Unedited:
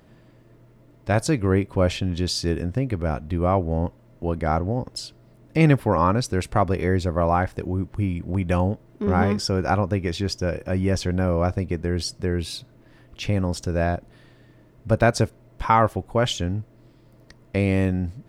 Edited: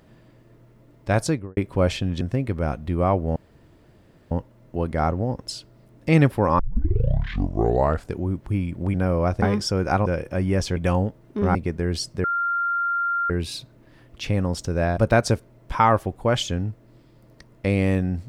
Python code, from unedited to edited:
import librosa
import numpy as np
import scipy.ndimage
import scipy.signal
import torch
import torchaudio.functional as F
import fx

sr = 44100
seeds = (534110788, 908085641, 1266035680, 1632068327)

y = fx.studio_fade_out(x, sr, start_s=1.23, length_s=0.34)
y = fx.edit(y, sr, fx.cut(start_s=2.21, length_s=0.43),
    fx.insert_room_tone(at_s=3.79, length_s=0.95),
    fx.tape_start(start_s=6.07, length_s=1.58),
    fx.swap(start_s=8.42, length_s=0.78, other_s=11.12, other_length_s=0.48),
    fx.cut(start_s=9.84, length_s=0.57),
    fx.insert_tone(at_s=12.29, length_s=1.06, hz=1390.0, db=-20.5),
    fx.cut(start_s=13.97, length_s=0.91), tone=tone)